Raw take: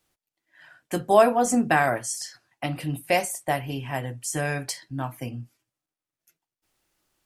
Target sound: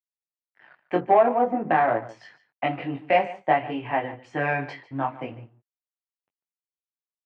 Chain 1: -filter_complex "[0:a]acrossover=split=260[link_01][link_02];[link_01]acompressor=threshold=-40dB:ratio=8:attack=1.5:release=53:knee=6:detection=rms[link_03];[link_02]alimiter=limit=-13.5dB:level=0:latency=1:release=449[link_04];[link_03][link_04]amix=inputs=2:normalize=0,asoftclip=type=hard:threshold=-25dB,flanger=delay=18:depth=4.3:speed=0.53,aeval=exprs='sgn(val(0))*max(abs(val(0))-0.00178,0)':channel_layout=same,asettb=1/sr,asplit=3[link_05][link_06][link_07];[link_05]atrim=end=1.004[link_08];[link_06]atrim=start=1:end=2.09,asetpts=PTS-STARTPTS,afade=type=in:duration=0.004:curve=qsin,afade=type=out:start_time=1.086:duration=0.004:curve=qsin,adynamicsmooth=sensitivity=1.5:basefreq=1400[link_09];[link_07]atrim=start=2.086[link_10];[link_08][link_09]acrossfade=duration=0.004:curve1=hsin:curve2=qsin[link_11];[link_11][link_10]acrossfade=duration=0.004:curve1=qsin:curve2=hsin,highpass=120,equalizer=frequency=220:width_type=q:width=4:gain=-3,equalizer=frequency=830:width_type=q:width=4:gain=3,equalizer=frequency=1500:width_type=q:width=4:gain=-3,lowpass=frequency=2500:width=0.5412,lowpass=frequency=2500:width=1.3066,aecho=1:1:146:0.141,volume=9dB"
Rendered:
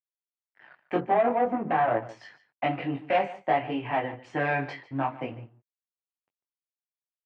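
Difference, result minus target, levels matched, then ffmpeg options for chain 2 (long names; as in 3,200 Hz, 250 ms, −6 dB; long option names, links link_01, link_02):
hard clipping: distortion +15 dB
-filter_complex "[0:a]acrossover=split=260[link_01][link_02];[link_01]acompressor=threshold=-40dB:ratio=8:attack=1.5:release=53:knee=6:detection=rms[link_03];[link_02]alimiter=limit=-13.5dB:level=0:latency=1:release=449[link_04];[link_03][link_04]amix=inputs=2:normalize=0,asoftclip=type=hard:threshold=-16dB,flanger=delay=18:depth=4.3:speed=0.53,aeval=exprs='sgn(val(0))*max(abs(val(0))-0.00178,0)':channel_layout=same,asettb=1/sr,asplit=3[link_05][link_06][link_07];[link_05]atrim=end=1.004[link_08];[link_06]atrim=start=1:end=2.09,asetpts=PTS-STARTPTS,afade=type=in:duration=0.004:curve=qsin,afade=type=out:start_time=1.086:duration=0.004:curve=qsin,adynamicsmooth=sensitivity=1.5:basefreq=1400[link_09];[link_07]atrim=start=2.086[link_10];[link_08][link_09]acrossfade=duration=0.004:curve1=hsin:curve2=qsin[link_11];[link_11][link_10]acrossfade=duration=0.004:curve1=qsin:curve2=hsin,highpass=120,equalizer=frequency=220:width_type=q:width=4:gain=-3,equalizer=frequency=830:width_type=q:width=4:gain=3,equalizer=frequency=1500:width_type=q:width=4:gain=-3,lowpass=frequency=2500:width=0.5412,lowpass=frequency=2500:width=1.3066,aecho=1:1:146:0.141,volume=9dB"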